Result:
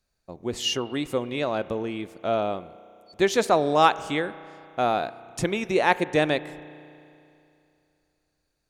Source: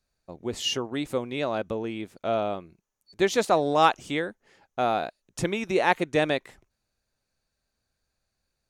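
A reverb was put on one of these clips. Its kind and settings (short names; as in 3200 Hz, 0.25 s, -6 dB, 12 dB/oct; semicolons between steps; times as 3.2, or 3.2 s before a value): spring tank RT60 2.7 s, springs 33 ms, chirp 80 ms, DRR 16 dB; gain +1.5 dB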